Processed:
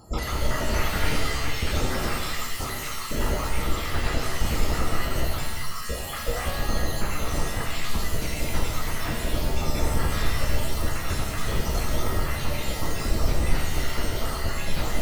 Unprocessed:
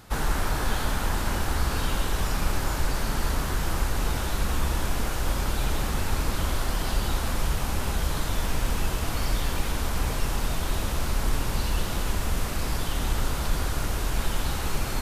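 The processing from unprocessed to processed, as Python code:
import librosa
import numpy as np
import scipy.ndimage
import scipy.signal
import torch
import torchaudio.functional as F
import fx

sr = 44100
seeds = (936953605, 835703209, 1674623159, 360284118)

y = fx.spec_dropout(x, sr, seeds[0], share_pct=64)
y = fx.formant_shift(y, sr, semitones=6)
y = fx.rev_shimmer(y, sr, seeds[1], rt60_s=1.1, semitones=7, shimmer_db=-2, drr_db=-1.0)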